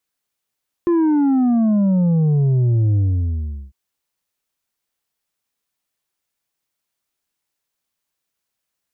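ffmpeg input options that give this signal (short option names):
-f lavfi -i "aevalsrc='0.211*clip((2.85-t)/0.76,0,1)*tanh(1.78*sin(2*PI*350*2.85/log(65/350)*(exp(log(65/350)*t/2.85)-1)))/tanh(1.78)':d=2.85:s=44100"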